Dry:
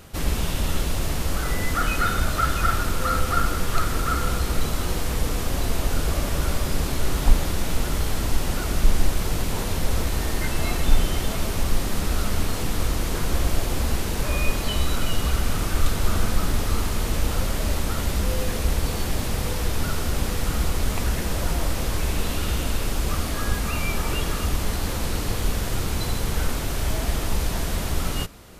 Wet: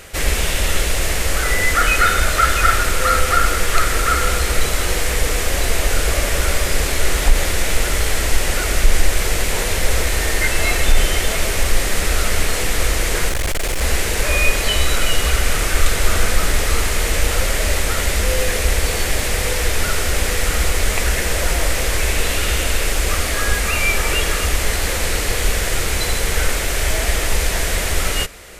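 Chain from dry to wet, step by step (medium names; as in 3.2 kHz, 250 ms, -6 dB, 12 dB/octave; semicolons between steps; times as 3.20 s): graphic EQ 125/250/500/1000/2000/8000 Hz -8/-7/+5/-4/+9/+6 dB; 13.29–13.82 s: hard clipper -22 dBFS, distortion -22 dB; loudness maximiser +7 dB; trim -1 dB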